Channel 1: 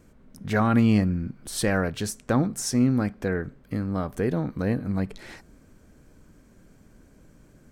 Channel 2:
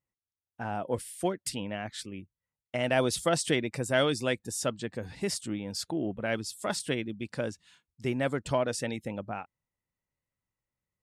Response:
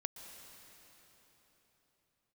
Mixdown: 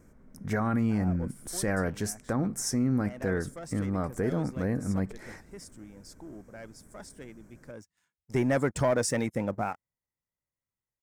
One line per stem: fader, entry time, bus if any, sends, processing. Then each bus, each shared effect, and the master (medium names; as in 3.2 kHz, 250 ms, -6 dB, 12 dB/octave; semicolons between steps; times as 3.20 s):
-2.0 dB, 0.00 s, no send, none
-1.5 dB, 0.30 s, no send, waveshaping leveller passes 2; auto duck -19 dB, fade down 1.60 s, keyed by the first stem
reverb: none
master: high-order bell 3.4 kHz -9.5 dB 1 oct; peak limiter -18 dBFS, peak gain reduction 7 dB